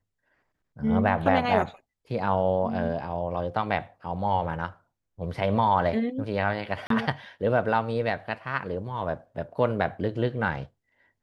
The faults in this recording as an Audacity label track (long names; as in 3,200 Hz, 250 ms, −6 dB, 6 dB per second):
6.870000	6.900000	drop-out 33 ms